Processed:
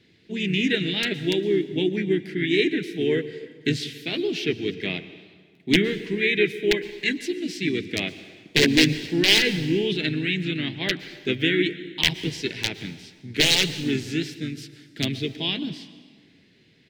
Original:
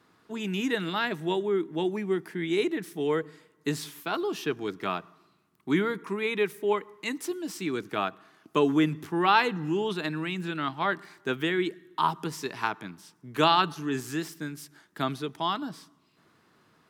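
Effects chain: low shelf 170 Hz +5.5 dB; wrapped overs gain 14 dB; EQ curve 450 Hz 0 dB, 1300 Hz -26 dB, 2000 Hz +6 dB, 4100 Hz +6 dB, 11000 Hz -12 dB; plate-style reverb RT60 1.7 s, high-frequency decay 0.75×, pre-delay 0.1 s, DRR 14 dB; harmoniser -4 st -16 dB, -3 st -8 dB; gain +3 dB

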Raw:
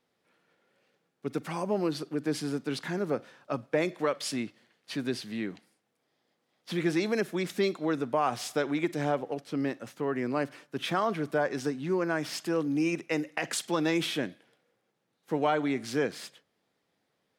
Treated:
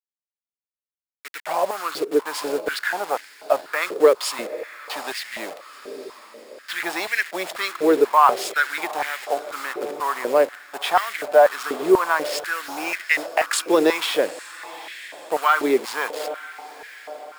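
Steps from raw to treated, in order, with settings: level-crossing sampler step -37.5 dBFS; bell 8200 Hz +2 dB 2.1 oct; notch 6000 Hz, Q 12; on a send: diffused feedback echo 0.855 s, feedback 51%, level -15 dB; on the sum: stepped high-pass 4.1 Hz 420–1900 Hz; gain +7 dB

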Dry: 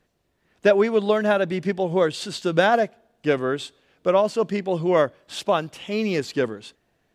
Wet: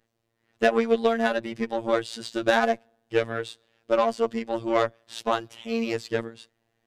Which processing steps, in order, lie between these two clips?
added harmonics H 2 -17 dB, 4 -24 dB, 7 -26 dB, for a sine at -5.5 dBFS; robotiser 110 Hz; varispeed +4%

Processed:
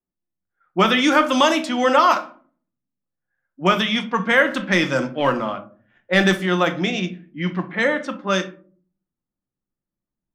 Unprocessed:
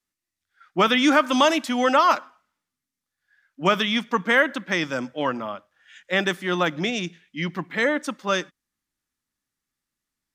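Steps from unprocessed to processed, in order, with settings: 4.46–6.46 sample leveller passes 1; shoebox room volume 370 m³, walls furnished, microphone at 0.91 m; low-pass opened by the level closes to 650 Hz, open at -16.5 dBFS; gain +1.5 dB

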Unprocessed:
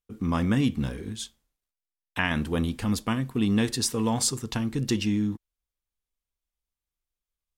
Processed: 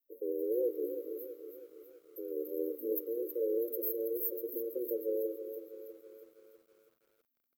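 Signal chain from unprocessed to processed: EQ curve 550 Hz 0 dB, 790 Hz +5 dB, 1200 Hz -19 dB, 2800 Hz +6 dB, 5000 Hz -3 dB, 7700 Hz +1 dB; frequency shift +230 Hz; brick-wall FIR band-stop 570–12000 Hz; RIAA curve recording; echo 0.296 s -22.5 dB; lo-fi delay 0.325 s, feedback 55%, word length 10-bit, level -9 dB; gain -5.5 dB

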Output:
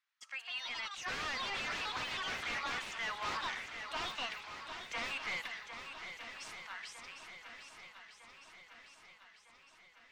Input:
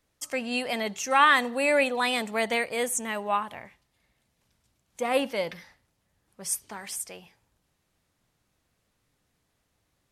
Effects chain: Doppler pass-by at 4.23, 7 m/s, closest 2 m; echoes that change speed 0.234 s, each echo +5 st, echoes 2; HPF 1200 Hz 24 dB/oct; in parallel at -4 dB: sine folder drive 20 dB, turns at -27 dBFS; on the sum: air absorption 170 m; on a send: swung echo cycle 1.255 s, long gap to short 1.5:1, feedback 54%, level -9 dB; on the sum: gain -2.5 dB

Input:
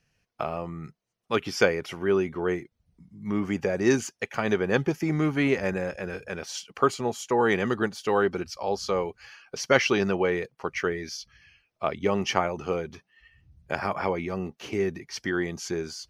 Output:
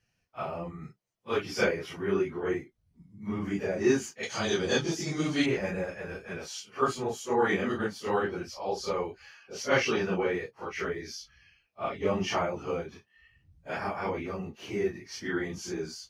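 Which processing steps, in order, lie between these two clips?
phase scrambler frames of 0.1 s; 4.23–5.46 band shelf 5400 Hz +15.5 dB; gain -4 dB

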